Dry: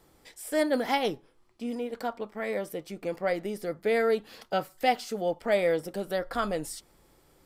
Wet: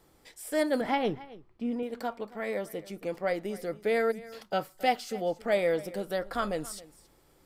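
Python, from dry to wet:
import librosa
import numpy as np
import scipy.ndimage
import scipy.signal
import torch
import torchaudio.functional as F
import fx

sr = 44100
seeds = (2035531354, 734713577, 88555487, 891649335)

y = fx.bass_treble(x, sr, bass_db=7, treble_db=-14, at=(0.81, 1.83))
y = fx.spec_erase(y, sr, start_s=4.11, length_s=0.22, low_hz=220.0, high_hz=4700.0)
y = fx.notch(y, sr, hz=960.0, q=8.2, at=(4.96, 5.5))
y = y + 10.0 ** (-19.0 / 20.0) * np.pad(y, (int(273 * sr / 1000.0), 0))[:len(y)]
y = F.gain(torch.from_numpy(y), -1.5).numpy()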